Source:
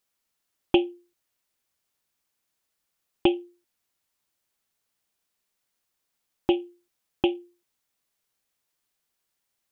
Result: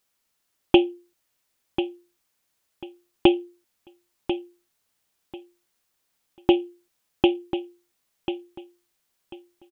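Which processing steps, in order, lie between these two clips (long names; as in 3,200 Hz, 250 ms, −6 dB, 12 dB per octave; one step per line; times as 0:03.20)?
repeating echo 1,042 ms, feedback 21%, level −10 dB
level +4.5 dB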